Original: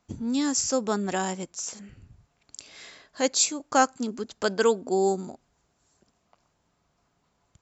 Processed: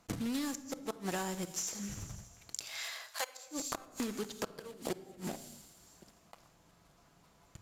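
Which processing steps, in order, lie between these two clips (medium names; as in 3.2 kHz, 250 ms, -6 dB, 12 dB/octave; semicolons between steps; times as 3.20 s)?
block-companded coder 3-bit; feedback echo behind a high-pass 83 ms, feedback 73%, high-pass 4.3 kHz, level -16 dB; inverted gate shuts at -16 dBFS, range -33 dB; 2.65–3.46 s: high-pass 670 Hz 24 dB/octave; reverberation RT60 0.80 s, pre-delay 6 ms, DRR 12 dB; compression 5:1, threshold -41 dBFS, peak gain reduction 17 dB; trim +5.5 dB; Vorbis 128 kbps 32 kHz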